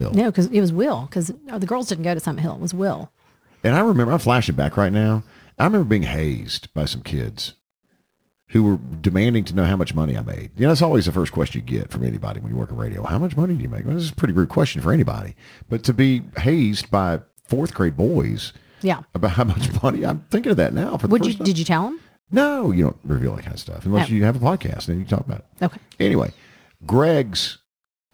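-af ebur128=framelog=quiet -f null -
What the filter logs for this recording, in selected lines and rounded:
Integrated loudness:
  I:         -20.9 LUFS
  Threshold: -31.2 LUFS
Loudness range:
  LRA:         3.2 LU
  Threshold: -41.3 LUFS
  LRA low:   -23.1 LUFS
  LRA high:  -19.8 LUFS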